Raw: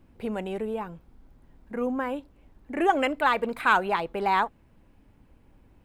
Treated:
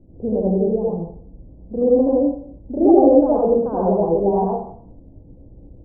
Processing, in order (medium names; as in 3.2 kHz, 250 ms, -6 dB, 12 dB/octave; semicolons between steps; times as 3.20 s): steep low-pass 640 Hz 36 dB/octave; reverberation RT60 0.60 s, pre-delay 72 ms, DRR -5 dB; trim +7.5 dB